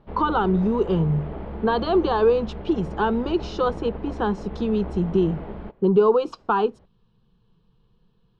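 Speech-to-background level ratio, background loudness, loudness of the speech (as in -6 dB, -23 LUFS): 12.5 dB, -35.5 LUFS, -23.0 LUFS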